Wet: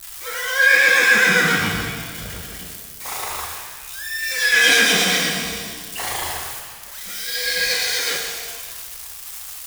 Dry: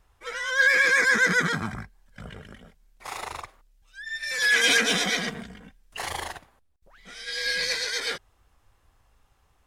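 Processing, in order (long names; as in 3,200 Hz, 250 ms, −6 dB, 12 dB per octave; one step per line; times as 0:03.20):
spike at every zero crossing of −27.5 dBFS
reverb with rising layers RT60 1.7 s, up +7 semitones, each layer −8 dB, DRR 0 dB
level +2.5 dB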